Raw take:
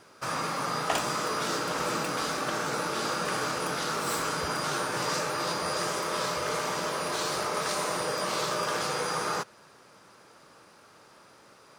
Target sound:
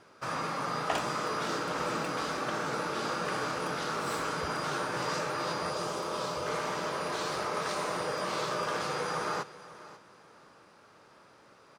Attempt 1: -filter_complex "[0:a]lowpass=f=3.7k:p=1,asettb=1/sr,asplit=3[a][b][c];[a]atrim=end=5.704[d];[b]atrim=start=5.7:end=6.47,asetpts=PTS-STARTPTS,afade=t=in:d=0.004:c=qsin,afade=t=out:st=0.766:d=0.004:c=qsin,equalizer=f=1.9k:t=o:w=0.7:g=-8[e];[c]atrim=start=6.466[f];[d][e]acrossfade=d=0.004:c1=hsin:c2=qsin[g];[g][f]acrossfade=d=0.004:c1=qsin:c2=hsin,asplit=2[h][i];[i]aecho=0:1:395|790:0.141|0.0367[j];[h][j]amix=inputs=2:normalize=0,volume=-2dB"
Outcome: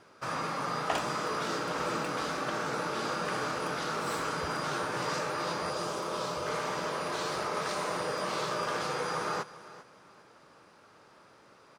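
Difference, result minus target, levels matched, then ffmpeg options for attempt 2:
echo 0.145 s early
-filter_complex "[0:a]lowpass=f=3.7k:p=1,asettb=1/sr,asplit=3[a][b][c];[a]atrim=end=5.704[d];[b]atrim=start=5.7:end=6.47,asetpts=PTS-STARTPTS,afade=t=in:d=0.004:c=qsin,afade=t=out:st=0.766:d=0.004:c=qsin,equalizer=f=1.9k:t=o:w=0.7:g=-8[e];[c]atrim=start=6.466[f];[d][e]acrossfade=d=0.004:c1=hsin:c2=qsin[g];[g][f]acrossfade=d=0.004:c1=qsin:c2=hsin,asplit=2[h][i];[i]aecho=0:1:540|1080:0.141|0.0367[j];[h][j]amix=inputs=2:normalize=0,volume=-2dB"

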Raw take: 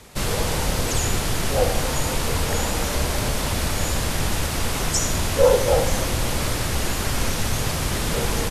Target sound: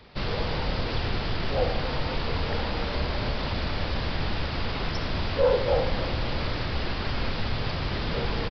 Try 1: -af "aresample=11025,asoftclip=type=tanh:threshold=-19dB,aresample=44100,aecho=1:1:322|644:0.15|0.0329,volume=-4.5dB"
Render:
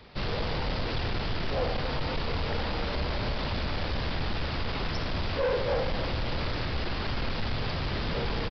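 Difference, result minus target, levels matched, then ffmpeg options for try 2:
soft clip: distortion +13 dB
-af "aresample=11025,asoftclip=type=tanh:threshold=-7.5dB,aresample=44100,aecho=1:1:322|644:0.15|0.0329,volume=-4.5dB"

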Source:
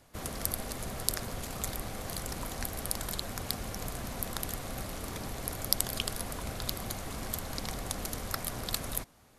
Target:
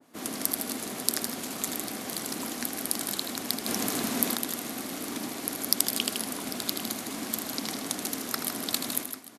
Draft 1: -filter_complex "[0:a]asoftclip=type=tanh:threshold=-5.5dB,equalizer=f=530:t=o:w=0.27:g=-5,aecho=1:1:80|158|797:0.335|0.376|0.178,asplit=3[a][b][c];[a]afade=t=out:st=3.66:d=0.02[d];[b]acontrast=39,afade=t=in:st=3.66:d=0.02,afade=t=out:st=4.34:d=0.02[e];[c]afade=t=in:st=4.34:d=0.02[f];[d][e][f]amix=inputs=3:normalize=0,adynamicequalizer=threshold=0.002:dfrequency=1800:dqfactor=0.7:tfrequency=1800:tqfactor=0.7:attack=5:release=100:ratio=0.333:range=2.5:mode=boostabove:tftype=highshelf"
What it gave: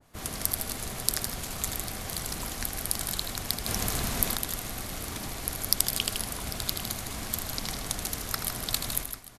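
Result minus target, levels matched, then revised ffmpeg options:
250 Hz band -6.0 dB
-filter_complex "[0:a]asoftclip=type=tanh:threshold=-5.5dB,highpass=f=260:t=q:w=3,equalizer=f=530:t=o:w=0.27:g=-5,aecho=1:1:80|158|797:0.335|0.376|0.178,asplit=3[a][b][c];[a]afade=t=out:st=3.66:d=0.02[d];[b]acontrast=39,afade=t=in:st=3.66:d=0.02,afade=t=out:st=4.34:d=0.02[e];[c]afade=t=in:st=4.34:d=0.02[f];[d][e][f]amix=inputs=3:normalize=0,adynamicequalizer=threshold=0.002:dfrequency=1800:dqfactor=0.7:tfrequency=1800:tqfactor=0.7:attack=5:release=100:ratio=0.333:range=2.5:mode=boostabove:tftype=highshelf"

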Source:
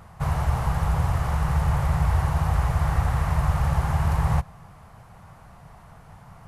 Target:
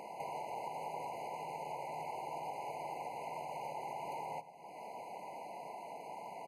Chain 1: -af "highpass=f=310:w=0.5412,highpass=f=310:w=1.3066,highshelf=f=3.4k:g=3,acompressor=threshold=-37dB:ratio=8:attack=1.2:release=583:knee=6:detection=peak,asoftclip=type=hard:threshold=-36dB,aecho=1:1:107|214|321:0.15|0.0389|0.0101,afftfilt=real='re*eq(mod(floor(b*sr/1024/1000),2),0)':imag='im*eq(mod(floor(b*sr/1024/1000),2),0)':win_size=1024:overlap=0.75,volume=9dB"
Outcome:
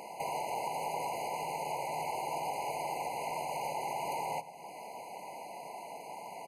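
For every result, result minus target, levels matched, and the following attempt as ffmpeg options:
8000 Hz band +7.0 dB; compressor: peak gain reduction -6 dB
-af "highpass=f=310:w=0.5412,highpass=f=310:w=1.3066,highshelf=f=3.4k:g=-6.5,acompressor=threshold=-37dB:ratio=8:attack=1.2:release=583:knee=6:detection=peak,asoftclip=type=hard:threshold=-36dB,aecho=1:1:107|214|321:0.15|0.0389|0.0101,afftfilt=real='re*eq(mod(floor(b*sr/1024/1000),2),0)':imag='im*eq(mod(floor(b*sr/1024/1000),2),0)':win_size=1024:overlap=0.75,volume=9dB"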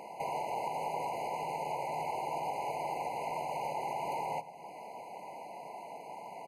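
compressor: peak gain reduction -6.5 dB
-af "highpass=f=310:w=0.5412,highpass=f=310:w=1.3066,highshelf=f=3.4k:g=-6.5,acompressor=threshold=-44.5dB:ratio=8:attack=1.2:release=583:knee=6:detection=peak,asoftclip=type=hard:threshold=-36dB,aecho=1:1:107|214|321:0.15|0.0389|0.0101,afftfilt=real='re*eq(mod(floor(b*sr/1024/1000),2),0)':imag='im*eq(mod(floor(b*sr/1024/1000),2),0)':win_size=1024:overlap=0.75,volume=9dB"

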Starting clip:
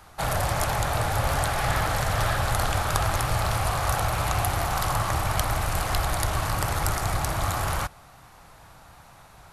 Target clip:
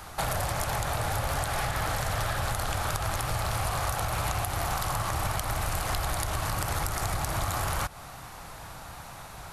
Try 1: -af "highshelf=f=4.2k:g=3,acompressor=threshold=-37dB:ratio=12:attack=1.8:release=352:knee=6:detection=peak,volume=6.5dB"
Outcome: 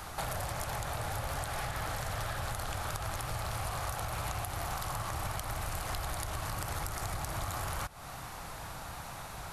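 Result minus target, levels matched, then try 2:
compressor: peak gain reduction +7 dB
-af "highshelf=f=4.2k:g=3,acompressor=threshold=-29.5dB:ratio=12:attack=1.8:release=352:knee=6:detection=peak,volume=6.5dB"

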